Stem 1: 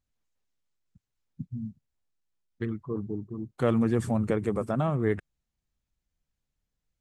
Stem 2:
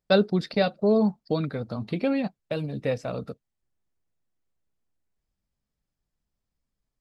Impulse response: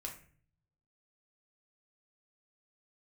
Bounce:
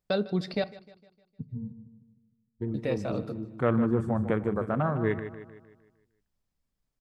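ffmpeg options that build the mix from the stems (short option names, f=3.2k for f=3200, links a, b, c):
-filter_complex "[0:a]afwtdn=0.0126,adynamicequalizer=threshold=0.00501:dfrequency=1400:dqfactor=1:tfrequency=1400:tqfactor=1:attack=5:release=100:ratio=0.375:range=2.5:mode=boostabove:tftype=bell,volume=-3dB,asplit=3[a][b][c];[b]volume=-9.5dB[d];[c]volume=-9.5dB[e];[1:a]alimiter=limit=-18.5dB:level=0:latency=1:release=484,volume=-1.5dB,asplit=3[f][g][h];[f]atrim=end=0.64,asetpts=PTS-STARTPTS,afade=t=out:st=0.636:d=0.004:c=hsin[i];[g]atrim=start=0.64:end=2.74,asetpts=PTS-STARTPTS,volume=0[j];[h]atrim=start=2.74,asetpts=PTS-STARTPTS,afade=t=in:d=0.004:c=hsin[k];[i][j][k]concat=n=3:v=0:a=1,asplit=3[l][m][n];[m]volume=-10dB[o];[n]volume=-17dB[p];[2:a]atrim=start_sample=2205[q];[d][o]amix=inputs=2:normalize=0[r];[r][q]afir=irnorm=-1:irlink=0[s];[e][p]amix=inputs=2:normalize=0,aecho=0:1:153|306|459|612|765|918|1071:1|0.47|0.221|0.104|0.0488|0.0229|0.0108[t];[a][l][s][t]amix=inputs=4:normalize=0"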